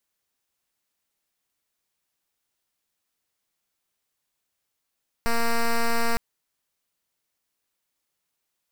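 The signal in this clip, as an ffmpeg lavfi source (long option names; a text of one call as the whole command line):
ffmpeg -f lavfi -i "aevalsrc='0.0891*(2*lt(mod(232*t,1),0.07)-1)':duration=0.91:sample_rate=44100" out.wav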